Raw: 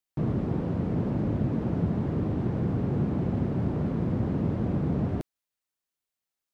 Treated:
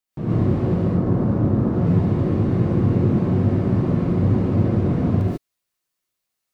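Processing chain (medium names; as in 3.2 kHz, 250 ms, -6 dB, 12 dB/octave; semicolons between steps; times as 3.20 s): 0.83–1.73 s: resonant high shelf 1.7 kHz -6 dB, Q 1.5; gated-style reverb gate 170 ms rising, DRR -7 dB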